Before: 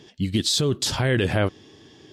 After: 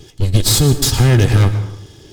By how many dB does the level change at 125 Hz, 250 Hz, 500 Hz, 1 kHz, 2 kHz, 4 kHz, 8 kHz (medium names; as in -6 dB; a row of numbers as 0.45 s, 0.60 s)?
+13.5 dB, +6.0 dB, +3.5 dB, +6.0 dB, +3.0 dB, +5.5 dB, +10.5 dB